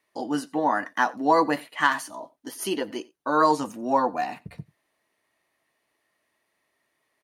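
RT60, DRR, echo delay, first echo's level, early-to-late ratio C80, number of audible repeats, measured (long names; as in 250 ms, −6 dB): no reverb audible, no reverb audible, 90 ms, −23.5 dB, no reverb audible, 1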